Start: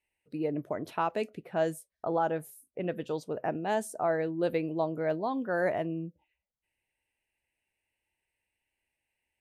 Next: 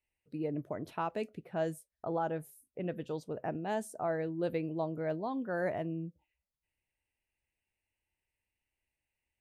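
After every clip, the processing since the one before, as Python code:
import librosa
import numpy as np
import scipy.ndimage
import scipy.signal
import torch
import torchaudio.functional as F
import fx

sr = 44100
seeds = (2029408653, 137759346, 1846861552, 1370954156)

y = fx.low_shelf(x, sr, hz=170.0, db=9.5)
y = F.gain(torch.from_numpy(y), -6.0).numpy()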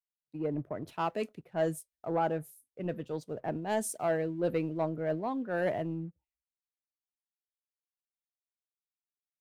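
y = fx.leveller(x, sr, passes=1)
y = fx.band_widen(y, sr, depth_pct=100)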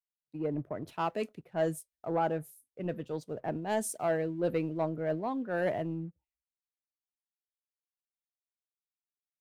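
y = x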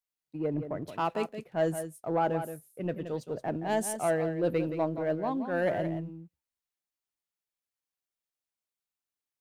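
y = x + 10.0 ** (-9.5 / 20.0) * np.pad(x, (int(173 * sr / 1000.0), 0))[:len(x)]
y = F.gain(torch.from_numpy(y), 2.0).numpy()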